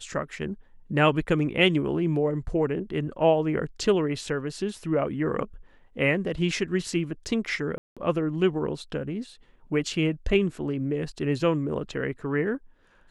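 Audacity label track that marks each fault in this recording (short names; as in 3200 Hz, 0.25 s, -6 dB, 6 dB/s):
7.780000	7.970000	gap 0.186 s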